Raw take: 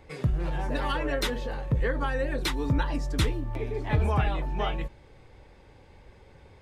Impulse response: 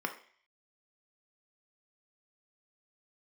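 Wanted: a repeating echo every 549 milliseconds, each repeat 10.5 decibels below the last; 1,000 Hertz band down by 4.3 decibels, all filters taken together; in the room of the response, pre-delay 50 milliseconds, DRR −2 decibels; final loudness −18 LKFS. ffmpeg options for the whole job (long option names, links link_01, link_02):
-filter_complex "[0:a]equalizer=frequency=1000:width_type=o:gain=-5.5,aecho=1:1:549|1098|1647:0.299|0.0896|0.0269,asplit=2[link_01][link_02];[1:a]atrim=start_sample=2205,adelay=50[link_03];[link_02][link_03]afir=irnorm=-1:irlink=0,volume=-3dB[link_04];[link_01][link_04]amix=inputs=2:normalize=0,volume=9.5dB"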